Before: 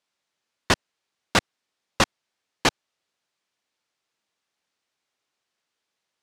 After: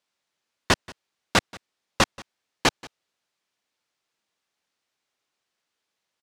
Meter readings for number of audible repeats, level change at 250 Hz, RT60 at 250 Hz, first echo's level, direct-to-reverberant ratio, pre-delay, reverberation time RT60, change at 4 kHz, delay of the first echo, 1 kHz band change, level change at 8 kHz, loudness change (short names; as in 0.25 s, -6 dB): 1, 0.0 dB, none, -22.5 dB, none, none, none, 0.0 dB, 0.181 s, 0.0 dB, 0.0 dB, 0.0 dB